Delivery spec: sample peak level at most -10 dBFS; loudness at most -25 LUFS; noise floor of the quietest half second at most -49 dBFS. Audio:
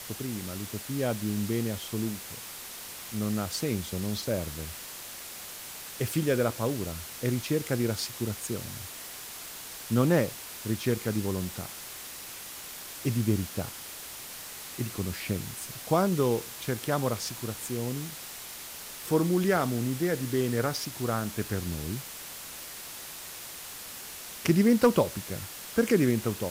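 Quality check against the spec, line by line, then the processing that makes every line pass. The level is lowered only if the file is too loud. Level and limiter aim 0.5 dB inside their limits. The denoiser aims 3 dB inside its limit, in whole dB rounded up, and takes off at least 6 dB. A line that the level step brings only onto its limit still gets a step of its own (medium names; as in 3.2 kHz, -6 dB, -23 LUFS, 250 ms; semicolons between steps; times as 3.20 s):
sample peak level -11.0 dBFS: pass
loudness -31.0 LUFS: pass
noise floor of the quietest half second -42 dBFS: fail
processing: noise reduction 10 dB, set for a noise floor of -42 dBFS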